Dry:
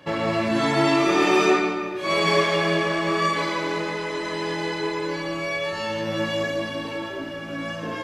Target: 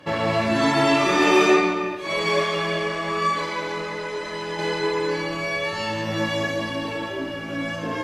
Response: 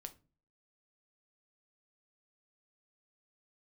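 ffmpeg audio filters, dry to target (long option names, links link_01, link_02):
-filter_complex "[0:a]asettb=1/sr,asplit=3[link_01][link_02][link_03];[link_01]atrim=end=1.954[link_04];[link_02]atrim=start=1.95:end=4.59,asetpts=PTS-STARTPTS,afade=type=in:duration=0.004:curve=qsin,afade=type=out:start_time=2.636:duration=0.004:curve=qsin,flanger=delay=0.7:depth=1.5:regen=74:speed=1.6:shape=sinusoidal[link_05];[link_03]atrim=start=4.586[link_06];[link_04][link_05]acrossfade=duration=0.004:curve1=hsin:curve2=qsin[link_07];[link_07][link_06]acrossfade=duration=0.004:curve1=qsin:curve2=hsin[link_08];[1:a]atrim=start_sample=2205,atrim=end_sample=3087,asetrate=26901,aresample=44100[link_09];[link_08][link_09]afir=irnorm=-1:irlink=0,volume=5dB"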